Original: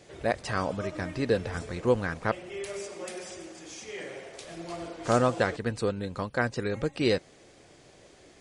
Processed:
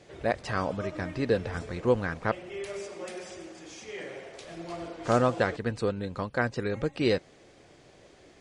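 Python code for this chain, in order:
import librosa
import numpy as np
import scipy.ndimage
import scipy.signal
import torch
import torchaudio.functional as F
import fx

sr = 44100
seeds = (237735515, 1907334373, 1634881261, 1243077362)

y = fx.high_shelf(x, sr, hz=8100.0, db=-11.5)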